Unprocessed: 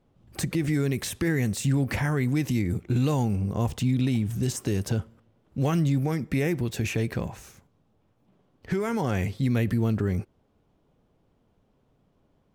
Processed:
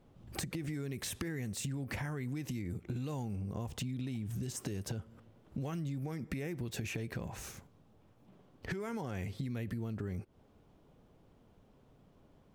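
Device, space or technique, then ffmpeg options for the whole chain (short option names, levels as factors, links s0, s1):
serial compression, peaks first: -af "acompressor=threshold=0.0224:ratio=6,acompressor=threshold=0.00708:ratio=2,volume=1.41"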